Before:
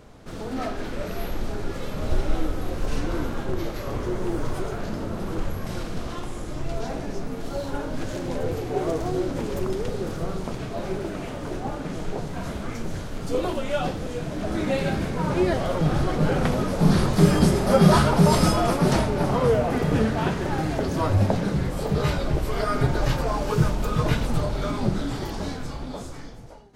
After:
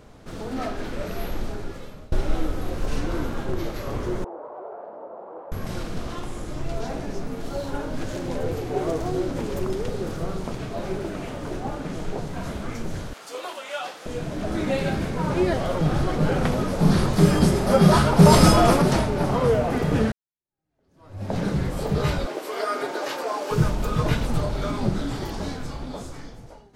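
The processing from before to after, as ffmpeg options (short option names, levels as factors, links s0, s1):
-filter_complex "[0:a]asettb=1/sr,asplit=3[s0][s1][s2];[s0]atrim=end=4.244[s3];[s1]atrim=start=4.24:end=5.52,asetpts=PTS-STARTPTS,afade=t=in:d=0.004:c=qsin,afade=t=out:st=1.276:d=0.004:c=qsin,asuperpass=centerf=700:order=4:qfactor=1.4[s4];[s2]atrim=start=5.516[s5];[s3][s4]acrossfade=d=0.004:c1=hsin:c2=qsin[s6];[s6][s5]acrossfade=d=0.004:c1=qsin:c2=hsin,asettb=1/sr,asplit=3[s7][s8][s9];[s7]atrim=end=13.134[s10];[s8]atrim=start=13.13:end=14.06,asetpts=PTS-STARTPTS,afade=t=in:d=0.004:c=qsin,afade=t=out:st=0.926:d=0.004:c=qsin,highpass=840[s11];[s9]atrim=start=14.056[s12];[s10][s11]acrossfade=d=0.004:c1=hsin:c2=qsin[s13];[s13][s12]acrossfade=d=0.004:c1=qsin:c2=hsin,asettb=1/sr,asplit=3[s14][s15][s16];[s14]atrim=end=18.194[s17];[s15]atrim=start=18.19:end=18.82,asetpts=PTS-STARTPTS,afade=t=in:d=0.004:c=qsin,afade=t=out:st=0.626:d=0.004:c=qsin,acontrast=43[s18];[s16]atrim=start=18.816[s19];[s17][s18]acrossfade=d=0.004:c1=hsin:c2=qsin[s20];[s20][s19]acrossfade=d=0.004:c1=qsin:c2=hsin,asettb=1/sr,asplit=3[s21][s22][s23];[s21]atrim=end=22.264[s24];[s22]atrim=start=22.26:end=23.51,asetpts=PTS-STARTPTS,afade=t=in:d=0.004:c=qsin,afade=t=out:st=1.246:d=0.004:c=qsin,highpass=f=330:w=0.5412,highpass=f=330:w=1.3066[s25];[s23]atrim=start=23.506[s26];[s24][s25]acrossfade=d=0.004:c1=hsin:c2=qsin[s27];[s27][s26]acrossfade=d=0.004:c1=qsin:c2=hsin,asplit=3[s28][s29][s30];[s28]atrim=end=2.12,asetpts=PTS-STARTPTS,afade=t=out:st=1.38:d=0.74:silence=0.0668344[s31];[s29]atrim=start=2.12:end=20.12,asetpts=PTS-STARTPTS,afade=t=in:d=0.004:c=hsin:silence=0.0668344,afade=t=out:st=17.996:d=0.004:c=hsin[s32];[s30]atrim=start=20.12,asetpts=PTS-STARTPTS,afade=t=in:d=1.26:c=exp[s33];[s31][s32][s33]concat=n=3:v=0:a=1"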